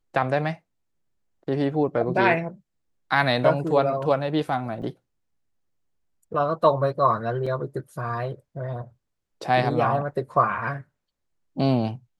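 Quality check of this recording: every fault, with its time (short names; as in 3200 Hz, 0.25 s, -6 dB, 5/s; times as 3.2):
4.82 gap 3.1 ms
7.46 gap 4.8 ms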